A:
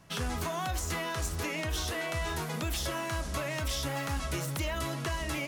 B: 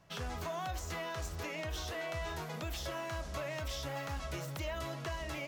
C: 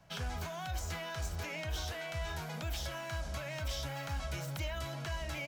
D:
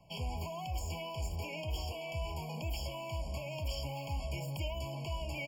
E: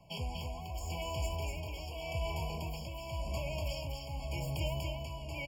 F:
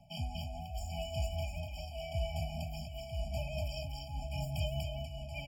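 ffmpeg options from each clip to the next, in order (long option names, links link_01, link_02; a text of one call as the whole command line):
ffmpeg -i in.wav -af "equalizer=frequency=250:width_type=o:width=0.67:gain=-4,equalizer=frequency=630:width_type=o:width=0.67:gain=4,equalizer=frequency=10000:width_type=o:width=0.67:gain=-9,volume=-6.5dB" out.wav
ffmpeg -i in.wav -filter_complex "[0:a]aecho=1:1:1.3:0.32,acrossover=split=230|1300[link_01][link_02][link_03];[link_02]alimiter=level_in=17dB:limit=-24dB:level=0:latency=1,volume=-17dB[link_04];[link_01][link_04][link_03]amix=inputs=3:normalize=0,volume=1dB" out.wav
ffmpeg -i in.wav -af "afftfilt=real='re*eq(mod(floor(b*sr/1024/1100),2),0)':imag='im*eq(mod(floor(b*sr/1024/1100),2),0)':win_size=1024:overlap=0.75,volume=1dB" out.wav
ffmpeg -i in.wav -af "tremolo=f=0.88:d=0.63,aecho=1:1:241:0.668,volume=2dB" out.wav
ffmpeg -i in.wav -af "tremolo=f=5:d=0.42,afftfilt=real='re*eq(mod(floor(b*sr/1024/290),2),0)':imag='im*eq(mod(floor(b*sr/1024/290),2),0)':win_size=1024:overlap=0.75,volume=2dB" out.wav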